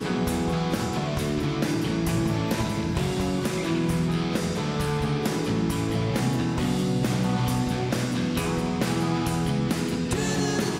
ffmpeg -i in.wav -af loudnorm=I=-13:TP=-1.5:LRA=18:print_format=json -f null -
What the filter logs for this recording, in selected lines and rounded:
"input_i" : "-25.9",
"input_tp" : "-12.9",
"input_lra" : "0.6",
"input_thresh" : "-35.9",